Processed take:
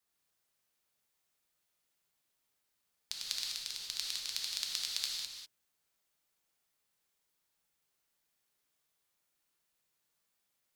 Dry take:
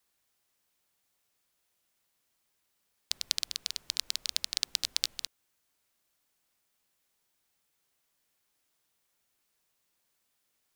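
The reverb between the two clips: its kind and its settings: gated-style reverb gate 220 ms flat, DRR -2 dB; trim -8 dB

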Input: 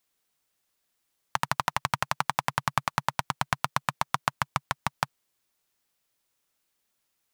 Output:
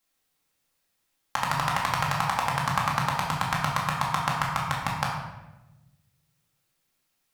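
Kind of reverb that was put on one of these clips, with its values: simulated room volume 500 m³, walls mixed, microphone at 2.2 m; trim -2.5 dB

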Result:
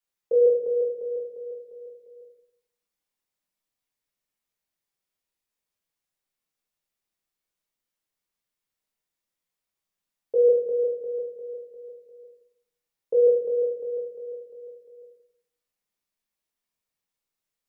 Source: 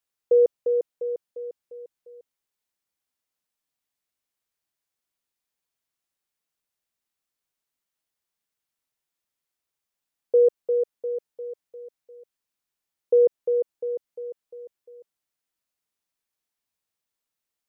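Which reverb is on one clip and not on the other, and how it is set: simulated room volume 140 m³, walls mixed, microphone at 1.3 m; trim -5.5 dB

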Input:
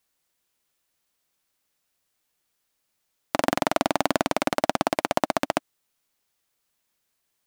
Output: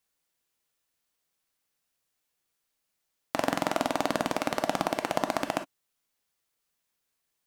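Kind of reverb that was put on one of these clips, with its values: gated-style reverb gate 80 ms flat, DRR 7 dB; trim -5 dB

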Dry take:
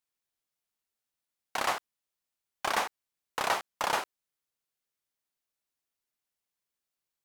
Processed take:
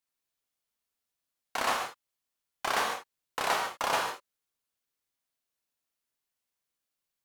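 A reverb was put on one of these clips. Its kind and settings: gated-style reverb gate 170 ms flat, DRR 1.5 dB; trim -1 dB

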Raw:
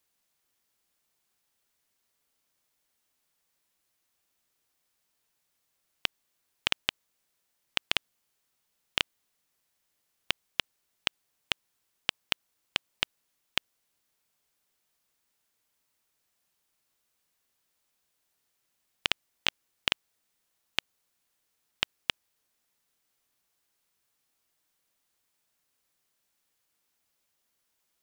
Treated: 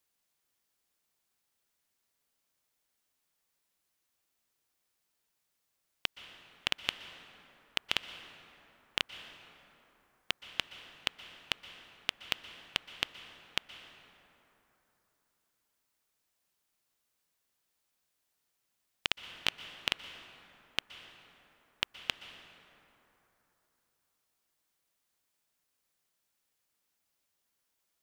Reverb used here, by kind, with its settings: plate-style reverb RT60 3.5 s, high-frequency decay 0.45×, pre-delay 110 ms, DRR 10.5 dB; trim -3.5 dB

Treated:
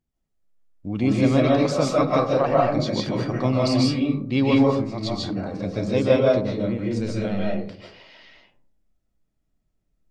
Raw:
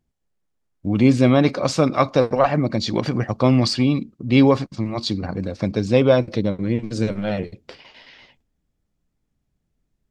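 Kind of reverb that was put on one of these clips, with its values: algorithmic reverb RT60 0.55 s, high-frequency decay 0.35×, pre-delay 105 ms, DRR -4 dB; trim -7.5 dB

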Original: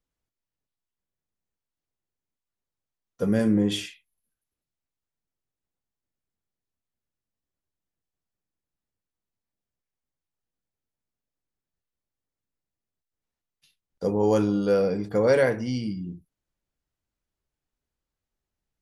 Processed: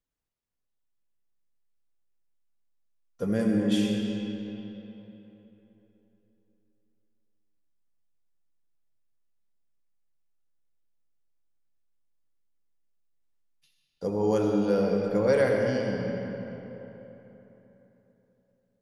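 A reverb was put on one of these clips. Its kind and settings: algorithmic reverb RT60 3.6 s, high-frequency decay 0.65×, pre-delay 40 ms, DRR 1 dB; trim -4.5 dB

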